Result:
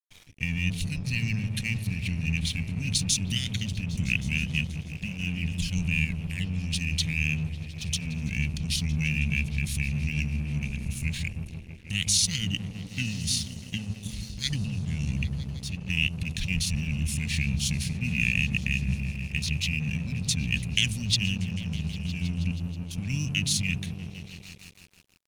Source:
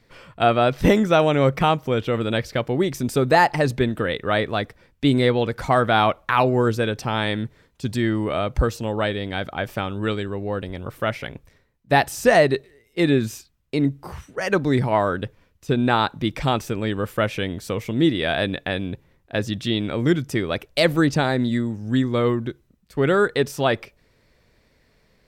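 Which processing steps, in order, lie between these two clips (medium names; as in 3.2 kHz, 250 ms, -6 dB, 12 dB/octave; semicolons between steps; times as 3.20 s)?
peak limiter -12.5 dBFS, peak gain reduction 8 dB; elliptic band-stop 260–3400 Hz, stop band 40 dB; compressor with a negative ratio -30 dBFS, ratio -1; pitch shift -5.5 st; treble shelf 2.3 kHz +11.5 dB; on a send: delay with an opening low-pass 160 ms, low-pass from 200 Hz, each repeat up 1 oct, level -3 dB; on the sum: crossover distortion -45 dBFS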